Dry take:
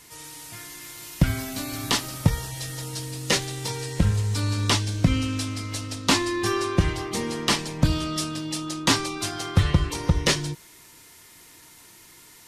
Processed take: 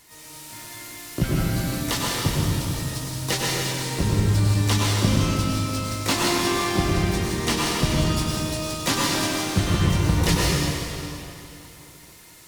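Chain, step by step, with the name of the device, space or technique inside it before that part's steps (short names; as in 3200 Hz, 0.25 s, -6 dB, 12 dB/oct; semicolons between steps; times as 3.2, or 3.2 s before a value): shimmer-style reverb (harmoniser +12 st -6 dB; reverb RT60 3.0 s, pre-delay 92 ms, DRR -5 dB); gain -4.5 dB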